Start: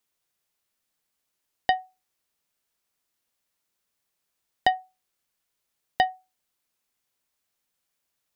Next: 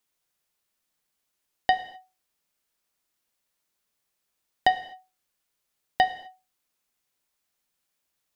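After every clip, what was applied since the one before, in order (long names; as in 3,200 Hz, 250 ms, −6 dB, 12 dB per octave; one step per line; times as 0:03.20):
reverb whose tail is shaped and stops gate 280 ms falling, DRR 9.5 dB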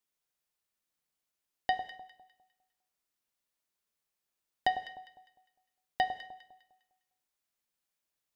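delay that swaps between a low-pass and a high-pass 101 ms, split 1,100 Hz, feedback 56%, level −9 dB
level −8 dB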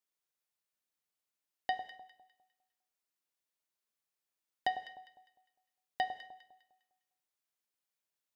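low-shelf EQ 130 Hz −9.5 dB
level −4 dB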